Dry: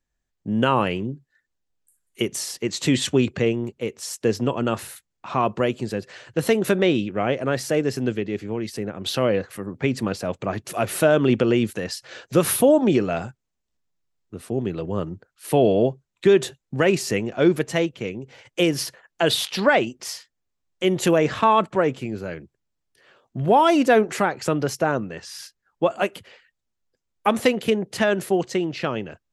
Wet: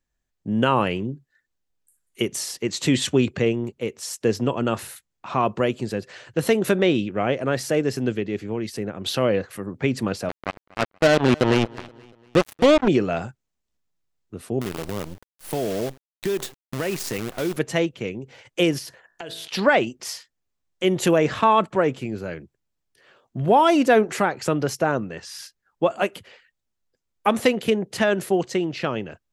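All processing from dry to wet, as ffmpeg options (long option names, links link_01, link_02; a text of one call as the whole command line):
ffmpeg -i in.wav -filter_complex "[0:a]asettb=1/sr,asplit=3[link_01][link_02][link_03];[link_01]atrim=end=10.294[link_04];[link_02]atrim=start=10.29:end=12.88,asetpts=PTS-STARTPTS,afade=type=in:duration=0.004:curve=qsin,afade=type=out:start_time=2.586:duration=0.004:curve=qsin,highshelf=frequency=7100:gain=-11,acrusher=bits=2:mix=0:aa=0.5,aecho=1:1:238|476|714:0.0708|0.0333|0.0156,atrim=end_sample=114219[link_05];[link_03]atrim=start=12.876[link_06];[link_04][link_05]acrossfade=duration=0.004:curve1=hsin:curve2=qsin[link_07];[link_07][link_06]acrossfade=duration=0.004:curve1=qsin:curve2=hsin,asettb=1/sr,asplit=3[link_08][link_09][link_10];[link_08]atrim=end=14.614[link_11];[link_09]atrim=start=14.61:end=17.57,asetpts=PTS-STARTPTS,afade=type=in:duration=0.004:curve=qsin,afade=type=out:start_time=2.956:duration=0.004:curve=qsin,acrusher=bits=5:dc=4:mix=0:aa=0.000001,acompressor=threshold=-25dB:ratio=2.5:attack=3.2:release=140:knee=1:detection=peak,highshelf=frequency=10000:gain=3.5[link_12];[link_10]atrim=start=17.566[link_13];[link_11][link_12]acrossfade=duration=0.004:curve1=hsin:curve2=qsin[link_14];[link_14][link_13]acrossfade=duration=0.004:curve1=qsin:curve2=hsin,asettb=1/sr,asplit=3[link_15][link_16][link_17];[link_15]atrim=end=18.784[link_18];[link_16]atrim=start=18.78:end=19.48,asetpts=PTS-STARTPTS,afade=type=in:duration=0.004:curve=qsin,afade=type=out:start_time=0.696:duration=0.004:curve=qsin,equalizer=frequency=1200:width_type=o:width=0.28:gain=-3.5,bandreject=frequency=54.9:width_type=h:width=4,bandreject=frequency=109.8:width_type=h:width=4,bandreject=frequency=164.7:width_type=h:width=4,bandreject=frequency=219.6:width_type=h:width=4,bandreject=frequency=274.5:width_type=h:width=4,bandreject=frequency=329.4:width_type=h:width=4,bandreject=frequency=384.3:width_type=h:width=4,bandreject=frequency=439.2:width_type=h:width=4,bandreject=frequency=494.1:width_type=h:width=4,bandreject=frequency=549:width_type=h:width=4,bandreject=frequency=603.9:width_type=h:width=4,bandreject=frequency=658.8:width_type=h:width=4,bandreject=frequency=713.7:width_type=h:width=4,bandreject=frequency=768.6:width_type=h:width=4,bandreject=frequency=823.5:width_type=h:width=4,bandreject=frequency=878.4:width_type=h:width=4,bandreject=frequency=933.3:width_type=h:width=4,bandreject=frequency=988.2:width_type=h:width=4,bandreject=frequency=1043.1:width_type=h:width=4,bandreject=frequency=1098:width_type=h:width=4,bandreject=frequency=1152.9:width_type=h:width=4,bandreject=frequency=1207.8:width_type=h:width=4,bandreject=frequency=1262.7:width_type=h:width=4,bandreject=frequency=1317.6:width_type=h:width=4,bandreject=frequency=1372.5:width_type=h:width=4,bandreject=frequency=1427.4:width_type=h:width=4,bandreject=frequency=1482.3:width_type=h:width=4,bandreject=frequency=1537.2:width_type=h:width=4,bandreject=frequency=1592.1:width_type=h:width=4,bandreject=frequency=1647:width_type=h:width=4,bandreject=frequency=1701.9:width_type=h:width=4,bandreject=frequency=1756.8:width_type=h:width=4,bandreject=frequency=1811.7:width_type=h:width=4,bandreject=frequency=1866.6:width_type=h:width=4,acompressor=threshold=-32dB:ratio=8:attack=3.2:release=140:knee=1:detection=peak[link_19];[link_17]atrim=start=19.476[link_20];[link_18][link_19]acrossfade=duration=0.004:curve1=hsin:curve2=qsin[link_21];[link_21][link_20]acrossfade=duration=0.004:curve1=qsin:curve2=hsin" out.wav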